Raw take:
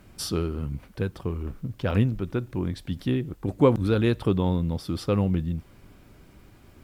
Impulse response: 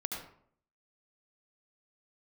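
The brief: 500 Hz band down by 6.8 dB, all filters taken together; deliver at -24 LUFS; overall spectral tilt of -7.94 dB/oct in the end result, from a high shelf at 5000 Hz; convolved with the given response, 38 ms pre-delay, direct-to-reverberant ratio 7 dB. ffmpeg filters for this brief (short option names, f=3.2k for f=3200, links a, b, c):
-filter_complex "[0:a]equalizer=f=500:t=o:g=-8.5,highshelf=f=5k:g=-5.5,asplit=2[a][b];[1:a]atrim=start_sample=2205,adelay=38[c];[b][c]afir=irnorm=-1:irlink=0,volume=-9dB[d];[a][d]amix=inputs=2:normalize=0,volume=3.5dB"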